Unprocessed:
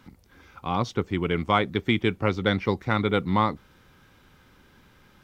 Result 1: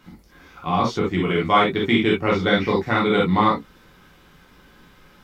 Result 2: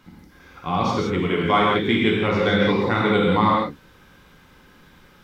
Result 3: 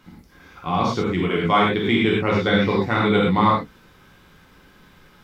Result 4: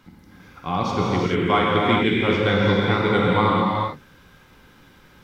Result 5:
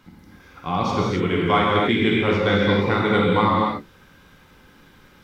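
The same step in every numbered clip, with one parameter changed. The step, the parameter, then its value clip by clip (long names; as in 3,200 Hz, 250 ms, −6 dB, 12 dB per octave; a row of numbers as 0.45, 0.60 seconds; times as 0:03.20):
reverb whose tail is shaped and stops, gate: 90, 210, 140, 460, 310 milliseconds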